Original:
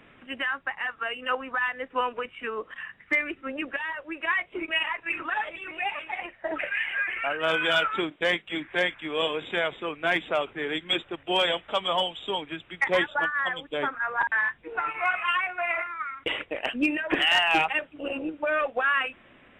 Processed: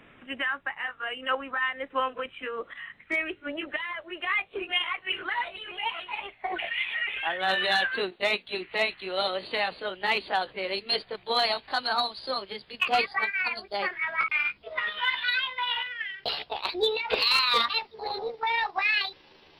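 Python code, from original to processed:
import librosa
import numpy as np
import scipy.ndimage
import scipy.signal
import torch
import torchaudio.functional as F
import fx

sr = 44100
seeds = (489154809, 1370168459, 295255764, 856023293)

y = fx.pitch_glide(x, sr, semitones=7.5, runs='starting unshifted')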